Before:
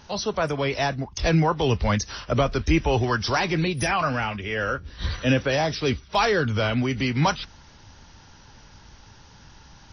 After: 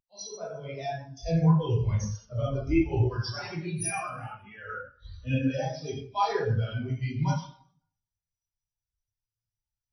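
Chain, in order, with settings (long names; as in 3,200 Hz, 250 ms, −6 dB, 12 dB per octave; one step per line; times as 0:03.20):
first-order pre-emphasis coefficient 0.8
dense smooth reverb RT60 1.4 s, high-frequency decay 0.8×, DRR −6 dB
every bin expanded away from the loudest bin 2.5 to 1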